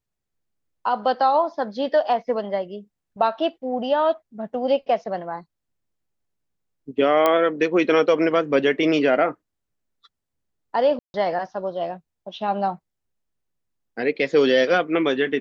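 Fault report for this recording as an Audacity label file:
7.260000	7.260000	pop -6 dBFS
10.990000	11.140000	gap 0.151 s

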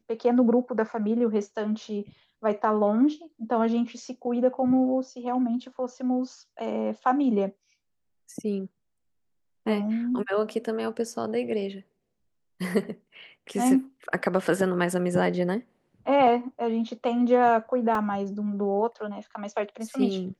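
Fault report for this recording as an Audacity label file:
17.950000	17.950000	gap 2.6 ms

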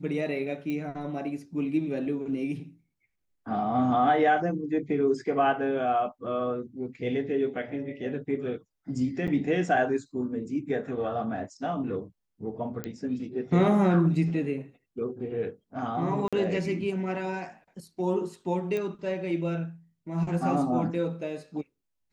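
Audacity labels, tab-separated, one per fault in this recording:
0.700000	0.700000	pop -22 dBFS
9.270000	9.280000	gap 7.8 ms
12.840000	12.840000	pop -18 dBFS
16.280000	16.330000	gap 46 ms
18.770000	18.770000	pop -20 dBFS

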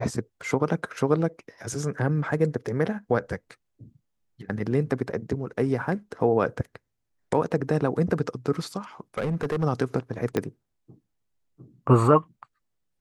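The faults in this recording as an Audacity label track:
9.180000	9.640000	clipped -22 dBFS
10.370000	10.370000	pop -12 dBFS

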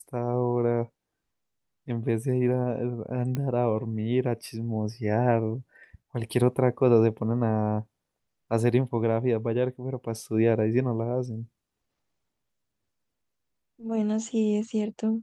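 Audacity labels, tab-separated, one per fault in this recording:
3.350000	3.350000	pop -17 dBFS

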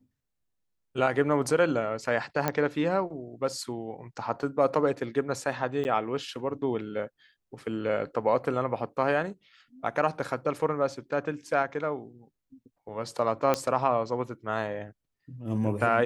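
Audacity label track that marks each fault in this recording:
2.480000	2.480000	pop -11 dBFS
5.840000	5.850000	gap 9.8 ms
13.540000	13.540000	pop -11 dBFS

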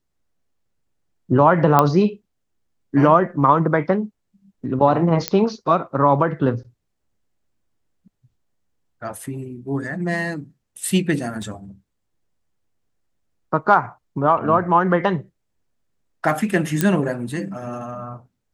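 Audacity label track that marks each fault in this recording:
1.790000	1.790000	pop -2 dBFS
5.280000	5.280000	pop -3 dBFS
11.420000	11.420000	gap 2.8 ms
16.810000	16.810000	pop -4 dBFS

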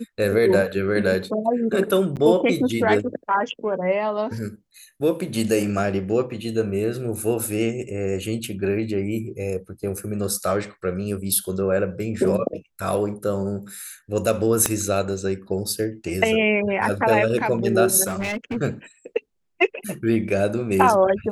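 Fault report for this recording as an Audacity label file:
2.160000	2.170000	gap 8.5 ms
14.660000	14.660000	pop -4 dBFS
18.060000	18.570000	clipped -22.5 dBFS

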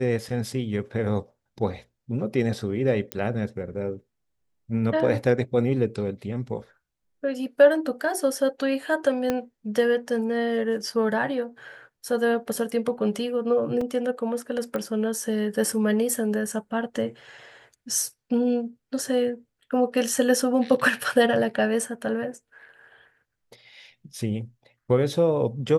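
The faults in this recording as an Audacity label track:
3.120000	3.120000	pop -11 dBFS
9.300000	9.300000	pop -11 dBFS
13.810000	13.810000	gap 3.5 ms
14.760000	14.760000	pop -17 dBFS

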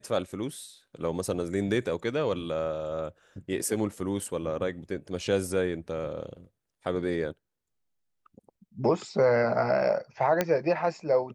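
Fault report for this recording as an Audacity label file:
10.410000	10.410000	pop -10 dBFS

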